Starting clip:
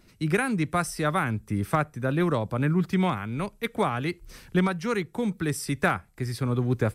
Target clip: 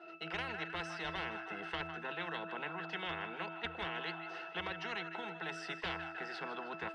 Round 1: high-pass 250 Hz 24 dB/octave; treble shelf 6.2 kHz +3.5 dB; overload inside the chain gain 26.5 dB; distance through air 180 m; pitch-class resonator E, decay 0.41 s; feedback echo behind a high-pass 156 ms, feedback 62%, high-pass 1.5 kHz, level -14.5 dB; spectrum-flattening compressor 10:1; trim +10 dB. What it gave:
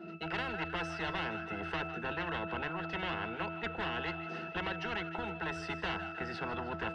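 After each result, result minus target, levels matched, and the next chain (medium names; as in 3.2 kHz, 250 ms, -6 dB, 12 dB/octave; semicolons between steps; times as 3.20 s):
overload inside the chain: distortion +9 dB; 250 Hz band +3.0 dB
high-pass 250 Hz 24 dB/octave; treble shelf 6.2 kHz +3.5 dB; overload inside the chain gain 20 dB; distance through air 180 m; pitch-class resonator E, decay 0.41 s; feedback echo behind a high-pass 156 ms, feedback 62%, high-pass 1.5 kHz, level -14.5 dB; spectrum-flattening compressor 10:1; trim +10 dB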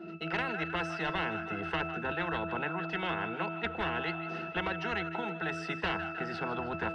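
250 Hz band +3.5 dB
high-pass 560 Hz 24 dB/octave; treble shelf 6.2 kHz +3.5 dB; overload inside the chain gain 20 dB; distance through air 180 m; pitch-class resonator E, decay 0.41 s; feedback echo behind a high-pass 156 ms, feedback 62%, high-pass 1.5 kHz, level -14.5 dB; spectrum-flattening compressor 10:1; trim +10 dB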